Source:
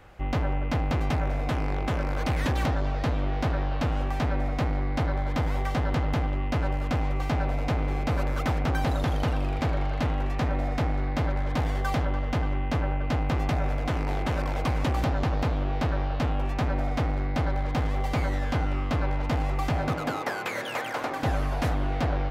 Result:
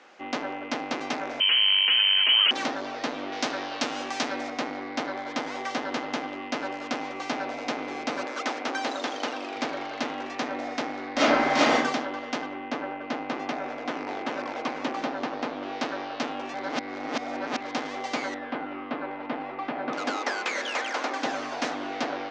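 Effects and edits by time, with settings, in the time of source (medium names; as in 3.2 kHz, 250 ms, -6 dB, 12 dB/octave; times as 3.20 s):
1.40–2.51 s: frequency inversion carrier 3.1 kHz
3.32–4.50 s: treble shelf 4.1 kHz +12 dB
8.25–9.56 s: high-pass 260 Hz
11.13–11.75 s: reverb throw, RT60 0.82 s, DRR -11 dB
12.46–15.63 s: low-pass 2.4 kHz 6 dB/octave
16.54–17.61 s: reverse
18.34–19.93 s: distance through air 460 m
whole clip: elliptic band-pass 250–6300 Hz, stop band 40 dB; treble shelf 2.7 kHz +9.5 dB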